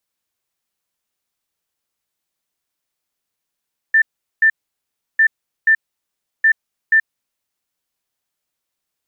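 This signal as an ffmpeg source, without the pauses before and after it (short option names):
-f lavfi -i "aevalsrc='0.376*sin(2*PI*1780*t)*clip(min(mod(mod(t,1.25),0.48),0.08-mod(mod(t,1.25),0.48))/0.005,0,1)*lt(mod(t,1.25),0.96)':d=3.75:s=44100"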